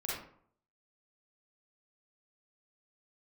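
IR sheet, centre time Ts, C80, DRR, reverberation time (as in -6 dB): 60 ms, 5.0 dB, -7.0 dB, 0.60 s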